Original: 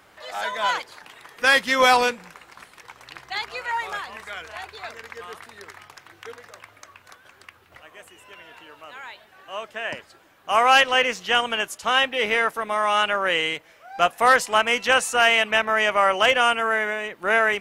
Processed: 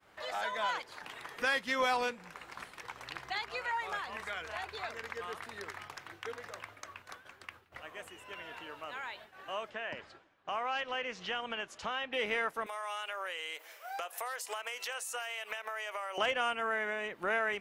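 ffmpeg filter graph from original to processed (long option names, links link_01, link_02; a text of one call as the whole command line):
ffmpeg -i in.wav -filter_complex "[0:a]asettb=1/sr,asplit=3[link_01][link_02][link_03];[link_01]atrim=end=9.704[link_04];[link_02]atrim=start=9.7:end=12.13,asetpts=PTS-STARTPTS,afade=type=in:duration=0.004:curve=qsin,afade=type=out:start_time=2.426:duration=0.004:curve=qsin,acompressor=threshold=-38dB:ratio=1.5:attack=3.2:release=140:knee=1:detection=peak,lowpass=5200[link_05];[link_03]atrim=start=12.126[link_06];[link_04][link_05]acrossfade=duration=0.004:curve1=hsin:curve2=qsin[link_07];[link_07][link_06]acrossfade=duration=0.004:curve1=qsin:curve2=hsin,asettb=1/sr,asplit=3[link_08][link_09][link_10];[link_08]atrim=end=12.664[link_11];[link_09]atrim=start=12.66:end=16.18,asetpts=PTS-STARTPTS,afade=type=in:duration=0.004:curve=qsin,afade=type=out:start_time=3.516:duration=0.004:curve=qsin,highpass=frequency=380:width=0.5412,highpass=frequency=380:width=1.3066,aemphasis=mode=production:type=bsi,acompressor=threshold=-30dB:ratio=12:attack=3.2:release=140:knee=1:detection=peak[link_12];[link_10]atrim=start=16.176[link_13];[link_11][link_12]acrossfade=duration=0.004:curve1=hsin:curve2=qsin[link_14];[link_14][link_13]acrossfade=duration=0.004:curve1=qsin:curve2=hsin,agate=range=-33dB:threshold=-47dB:ratio=3:detection=peak,highshelf=frequency=5000:gain=-5,acompressor=threshold=-39dB:ratio=2" out.wav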